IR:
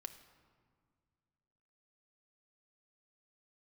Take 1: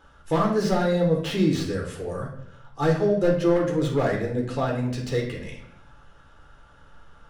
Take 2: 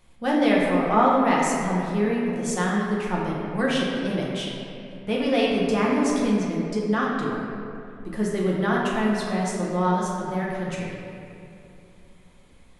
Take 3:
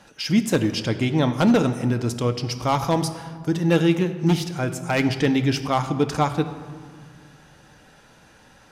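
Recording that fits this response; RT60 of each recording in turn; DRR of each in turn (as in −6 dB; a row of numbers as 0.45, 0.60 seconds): 3; 0.70, 2.7, 2.0 seconds; −1.5, −5.0, 7.5 decibels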